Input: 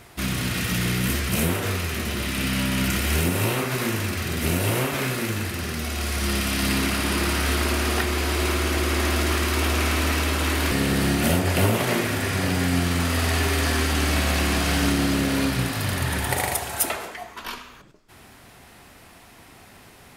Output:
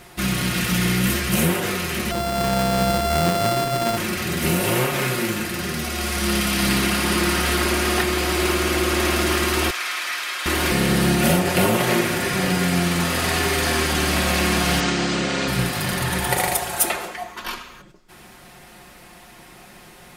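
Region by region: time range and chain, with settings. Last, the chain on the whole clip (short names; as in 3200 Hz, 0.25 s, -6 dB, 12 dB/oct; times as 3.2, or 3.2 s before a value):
2.11–3.97 sample sorter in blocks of 64 samples + running maximum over 9 samples
9.7–10.46 HPF 1400 Hz + high shelf 6200 Hz -9.5 dB + notch 2800 Hz, Q 13
14.8–15.48 steep low-pass 8000 Hz 48 dB/oct + low shelf 170 Hz -9.5 dB
whole clip: bell 96 Hz -8 dB 0.24 oct; comb 5.6 ms, depth 54%; gain +2.5 dB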